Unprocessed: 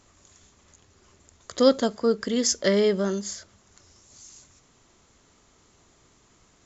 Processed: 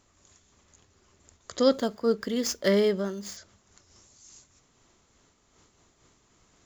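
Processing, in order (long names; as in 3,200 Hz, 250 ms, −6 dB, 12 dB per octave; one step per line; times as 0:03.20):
0:01.72–0:03.37: running median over 5 samples
amplitude modulation by smooth noise, depth 65%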